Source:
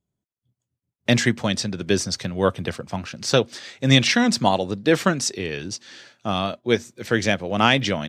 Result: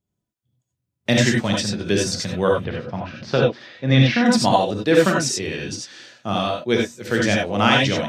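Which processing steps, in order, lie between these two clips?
2.55–4.26 s: distance through air 270 m; gated-style reverb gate 110 ms rising, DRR -1 dB; trim -1.5 dB

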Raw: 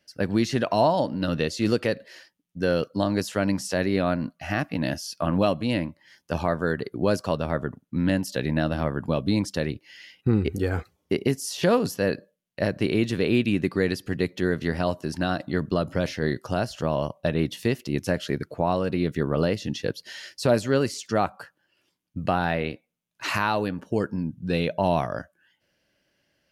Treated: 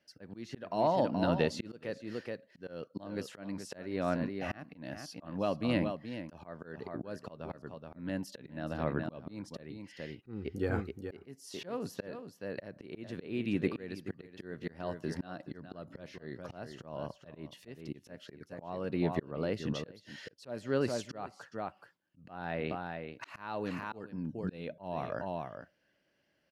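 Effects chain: treble shelf 3.8 kHz -10 dB; delay 426 ms -11.5 dB; slow attack 534 ms; bass shelf 88 Hz -10 dB; trim -3 dB

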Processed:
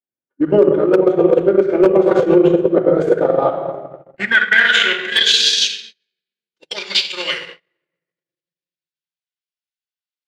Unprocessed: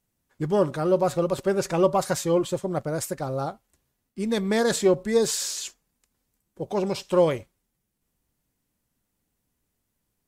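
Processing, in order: band-pass sweep 470 Hz -> 5.2 kHz, 2.89–5.54 s; high-order bell 2.4 kHz +11.5 dB; simulated room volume 2000 m³, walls mixed, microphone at 2.6 m; dynamic bell 3.6 kHz, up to +3 dB, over -37 dBFS, Q 3.1; transient shaper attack +8 dB, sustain -8 dB; hard clipper -7.5 dBFS, distortion -23 dB; reverse; compression 6:1, threshold -19 dBFS, peak gain reduction 8.5 dB; reverse; gate -48 dBFS, range -29 dB; formant shift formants -2 st; loudness maximiser +14.5 dB; trim -1 dB

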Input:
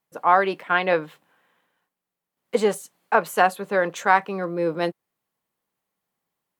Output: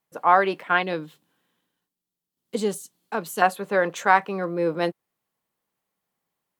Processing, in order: 0.83–3.42 s: high-order bell 1.1 kHz -10.5 dB 2.7 oct

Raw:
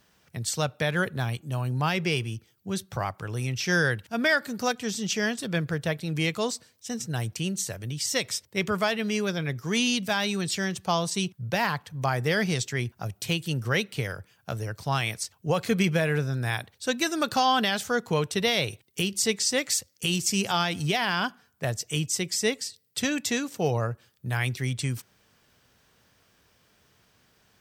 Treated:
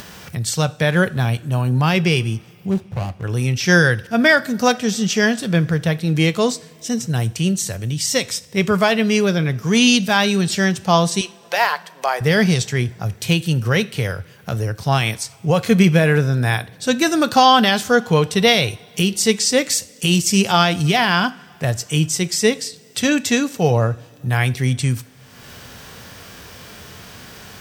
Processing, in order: 2.71–3.24 s: median filter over 41 samples; 11.21–12.21 s: high-pass 460 Hz 24 dB/octave; harmonic-percussive split harmonic +6 dB; upward compressor, threshold -30 dBFS; reverberation, pre-delay 3 ms, DRR 14.5 dB; trim +5.5 dB

